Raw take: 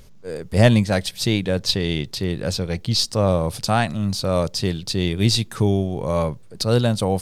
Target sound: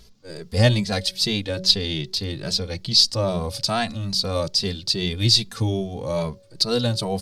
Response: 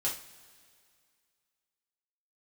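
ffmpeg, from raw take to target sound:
-filter_complex "[0:a]equalizer=frequency=4600:width_type=o:width=0.95:gain=11,bandreject=frequency=186.5:width_type=h:width=4,bandreject=frequency=373:width_type=h:width=4,bandreject=frequency=559.5:width_type=h:width=4,asplit=2[link_01][link_02];[link_02]adelay=2.6,afreqshift=2.4[link_03];[link_01][link_03]amix=inputs=2:normalize=1,volume=-1.5dB"

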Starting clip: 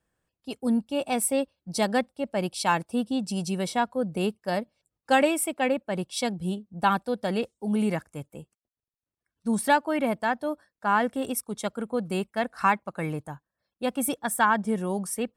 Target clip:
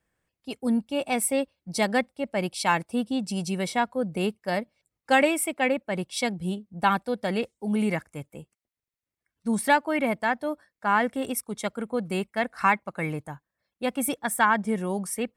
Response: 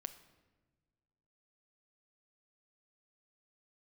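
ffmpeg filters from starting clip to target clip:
-af "equalizer=frequency=2100:width=3.5:gain=7.5"

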